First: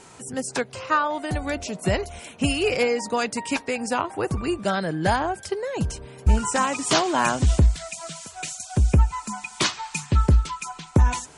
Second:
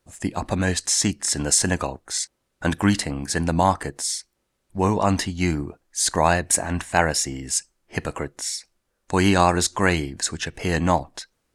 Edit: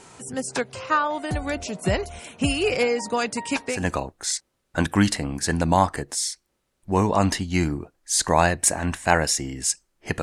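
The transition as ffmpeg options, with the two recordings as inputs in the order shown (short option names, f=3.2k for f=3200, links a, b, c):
-filter_complex "[0:a]apad=whole_dur=10.22,atrim=end=10.22,atrim=end=3.9,asetpts=PTS-STARTPTS[a];[1:a]atrim=start=1.55:end=8.09,asetpts=PTS-STARTPTS[b];[a][b]acrossfade=d=0.22:c1=tri:c2=tri"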